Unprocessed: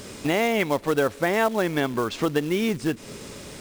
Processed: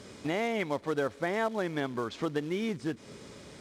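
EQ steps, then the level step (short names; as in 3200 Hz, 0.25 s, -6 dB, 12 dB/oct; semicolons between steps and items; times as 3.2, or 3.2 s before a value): HPF 58 Hz; air absorption 53 m; notch 2700 Hz, Q 14; -8.0 dB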